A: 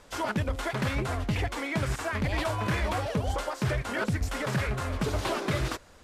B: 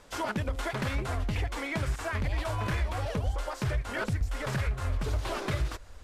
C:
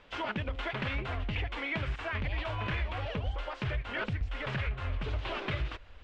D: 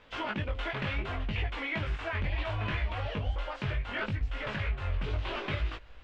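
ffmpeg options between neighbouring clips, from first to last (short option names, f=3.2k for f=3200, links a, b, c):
-af "asubboost=boost=6.5:cutoff=74,acompressor=threshold=-25dB:ratio=6,volume=-1dB"
-af "lowpass=f=2.9k:t=q:w=2.4,volume=-4dB"
-af "flanger=delay=18.5:depth=2.7:speed=0.69,volume=3.5dB"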